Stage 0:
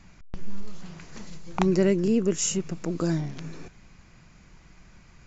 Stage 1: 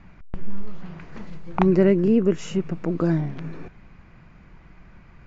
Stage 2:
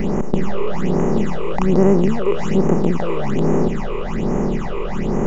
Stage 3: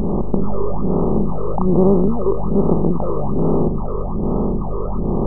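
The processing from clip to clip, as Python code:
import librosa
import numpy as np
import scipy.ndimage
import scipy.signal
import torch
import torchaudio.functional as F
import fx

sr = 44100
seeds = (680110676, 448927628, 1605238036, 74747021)

y1 = scipy.signal.sosfilt(scipy.signal.butter(2, 2200.0, 'lowpass', fs=sr, output='sos'), x)
y1 = y1 * 10.0 ** (4.5 / 20.0)
y2 = fx.bin_compress(y1, sr, power=0.2)
y2 = fx.phaser_stages(y2, sr, stages=8, low_hz=210.0, high_hz=3900.0, hz=1.2, feedback_pct=45)
y2 = y2 * 10.0 ** (-2.0 / 20.0)
y3 = fx.brickwall_lowpass(y2, sr, high_hz=1300.0)
y3 = fx.wow_flutter(y3, sr, seeds[0], rate_hz=2.1, depth_cents=58.0)
y3 = fx.add_hum(y3, sr, base_hz=50, snr_db=12)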